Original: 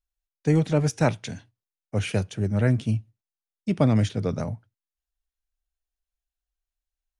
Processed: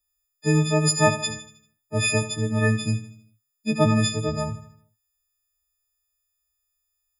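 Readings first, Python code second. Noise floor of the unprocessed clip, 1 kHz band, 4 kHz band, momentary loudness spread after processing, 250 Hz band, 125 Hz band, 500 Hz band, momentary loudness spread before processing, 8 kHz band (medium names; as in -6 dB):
under -85 dBFS, +6.0 dB, +10.5 dB, 11 LU, +0.5 dB, 0.0 dB, +2.5 dB, 14 LU, +12.5 dB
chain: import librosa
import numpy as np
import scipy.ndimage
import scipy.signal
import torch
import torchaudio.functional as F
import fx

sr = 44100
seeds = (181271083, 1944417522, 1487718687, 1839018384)

y = fx.freq_snap(x, sr, grid_st=6)
y = fx.echo_feedback(y, sr, ms=78, feedback_pct=47, wet_db=-12.0)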